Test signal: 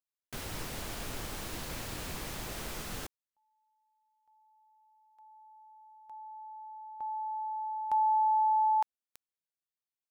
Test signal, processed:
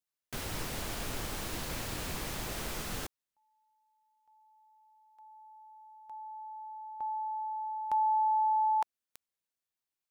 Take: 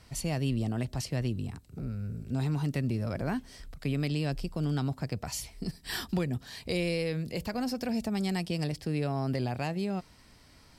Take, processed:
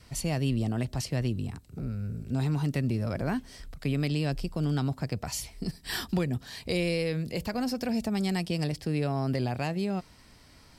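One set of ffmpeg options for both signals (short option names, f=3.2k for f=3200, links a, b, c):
-af "adynamicequalizer=threshold=0.00562:dfrequency=830:dqfactor=4.5:tfrequency=830:tqfactor=4.5:attack=5:release=100:ratio=0.375:range=2:mode=cutabove:tftype=bell,volume=2dB"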